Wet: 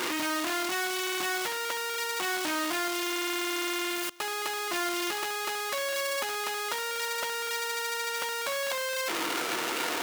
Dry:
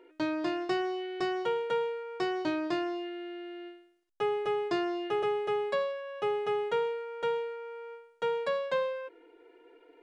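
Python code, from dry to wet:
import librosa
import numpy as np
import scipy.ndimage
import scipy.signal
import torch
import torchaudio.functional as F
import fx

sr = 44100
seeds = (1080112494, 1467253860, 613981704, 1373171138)

p1 = np.sign(x) * np.sqrt(np.mean(np.square(x)))
p2 = scipy.signal.sosfilt(scipy.signal.butter(2, 280.0, 'highpass', fs=sr, output='sos'), p1)
p3 = fx.peak_eq(p2, sr, hz=440.0, db=-13.0, octaves=0.62)
p4 = p3 + fx.echo_single(p3, sr, ms=1059, db=-23.5, dry=0)
y = p4 * 10.0 ** (6.0 / 20.0)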